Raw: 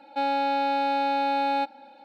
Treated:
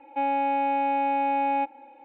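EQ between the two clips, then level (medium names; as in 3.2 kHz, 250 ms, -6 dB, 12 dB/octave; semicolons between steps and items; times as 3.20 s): low-pass 2.5 kHz 24 dB/octave; bass shelf 230 Hz +6 dB; static phaser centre 990 Hz, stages 8; +2.5 dB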